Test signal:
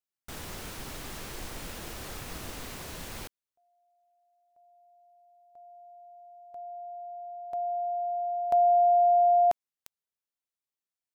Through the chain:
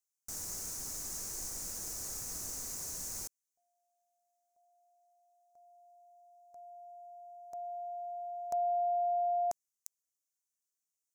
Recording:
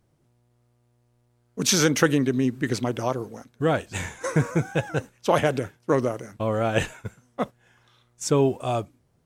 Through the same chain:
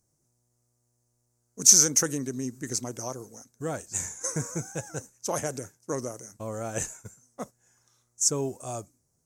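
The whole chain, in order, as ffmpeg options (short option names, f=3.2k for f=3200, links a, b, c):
-af "highshelf=f=4.6k:t=q:w=3:g=12.5,volume=-10dB"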